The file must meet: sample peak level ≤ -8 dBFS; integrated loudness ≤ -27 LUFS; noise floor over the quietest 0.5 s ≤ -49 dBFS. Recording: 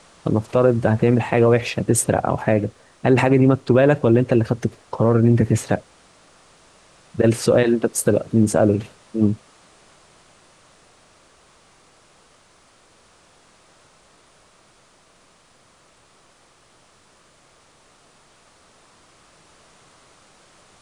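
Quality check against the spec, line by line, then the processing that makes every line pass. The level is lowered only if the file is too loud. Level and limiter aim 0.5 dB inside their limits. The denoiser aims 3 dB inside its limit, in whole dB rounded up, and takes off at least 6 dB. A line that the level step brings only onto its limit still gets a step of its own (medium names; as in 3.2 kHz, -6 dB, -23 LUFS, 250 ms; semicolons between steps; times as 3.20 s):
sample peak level -5.0 dBFS: fail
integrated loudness -18.5 LUFS: fail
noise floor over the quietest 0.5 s -55 dBFS: pass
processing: trim -9 dB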